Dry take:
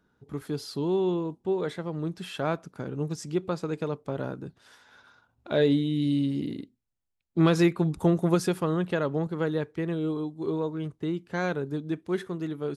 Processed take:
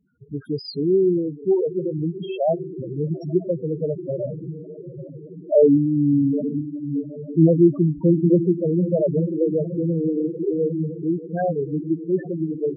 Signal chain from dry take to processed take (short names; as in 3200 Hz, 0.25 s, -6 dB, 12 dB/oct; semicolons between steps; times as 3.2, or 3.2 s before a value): rattling part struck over -26 dBFS, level -28 dBFS; high shelf 2700 Hz +6 dB; on a send: diffused feedback echo 0.783 s, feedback 61%, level -9.5 dB; on the sum: dynamic EQ 660 Hz, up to +5 dB, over -39 dBFS, Q 1.9; loudest bins only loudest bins 4; gain +7.5 dB